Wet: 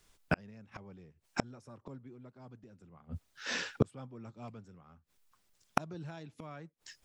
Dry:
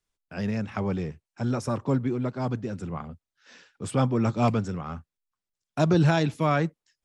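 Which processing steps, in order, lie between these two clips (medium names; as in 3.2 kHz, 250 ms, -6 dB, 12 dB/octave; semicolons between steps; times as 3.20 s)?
inverted gate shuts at -29 dBFS, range -40 dB; trim +16 dB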